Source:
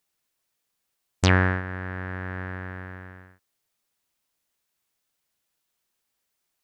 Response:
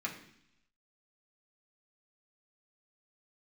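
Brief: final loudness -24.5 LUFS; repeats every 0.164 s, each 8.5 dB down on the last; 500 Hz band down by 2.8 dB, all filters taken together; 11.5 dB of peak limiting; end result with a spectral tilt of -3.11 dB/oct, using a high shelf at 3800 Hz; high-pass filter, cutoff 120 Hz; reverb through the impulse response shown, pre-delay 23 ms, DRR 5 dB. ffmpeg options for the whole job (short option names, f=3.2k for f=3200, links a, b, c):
-filter_complex "[0:a]highpass=120,equalizer=f=500:t=o:g=-3.5,highshelf=f=3.8k:g=-6,alimiter=limit=-16dB:level=0:latency=1,aecho=1:1:164|328|492|656:0.376|0.143|0.0543|0.0206,asplit=2[a][b];[1:a]atrim=start_sample=2205,adelay=23[c];[b][c]afir=irnorm=-1:irlink=0,volume=-8dB[d];[a][d]amix=inputs=2:normalize=0,volume=9dB"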